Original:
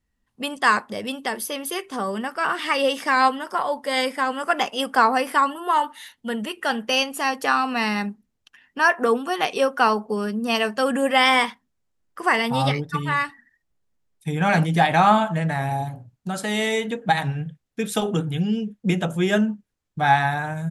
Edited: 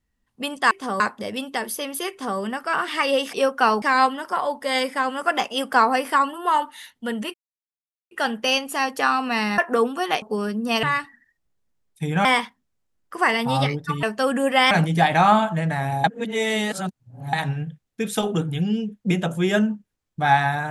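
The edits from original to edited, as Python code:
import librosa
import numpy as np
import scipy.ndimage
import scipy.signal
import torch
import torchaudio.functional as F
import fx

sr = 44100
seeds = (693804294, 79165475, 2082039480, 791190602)

y = fx.edit(x, sr, fx.duplicate(start_s=1.81, length_s=0.29, to_s=0.71),
    fx.insert_silence(at_s=6.56, length_s=0.77),
    fx.cut(start_s=8.03, length_s=0.85),
    fx.move(start_s=9.52, length_s=0.49, to_s=3.04),
    fx.swap(start_s=10.62, length_s=0.68, other_s=13.08, other_length_s=1.42),
    fx.reverse_span(start_s=15.83, length_s=1.29), tone=tone)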